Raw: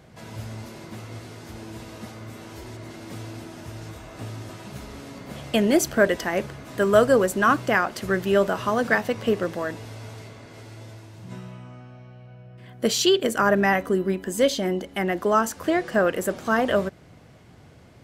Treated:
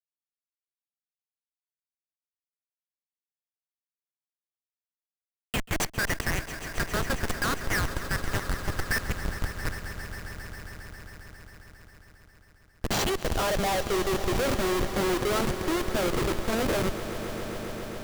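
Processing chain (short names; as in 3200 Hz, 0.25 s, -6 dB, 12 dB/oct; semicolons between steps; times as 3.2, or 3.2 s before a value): dynamic EQ 3200 Hz, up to -4 dB, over -37 dBFS, Q 0.88; high-pass sweep 2000 Hz -> 320 Hz, 12–14.52; Schmitt trigger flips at -24 dBFS; swelling echo 0.135 s, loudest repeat 5, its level -15 dB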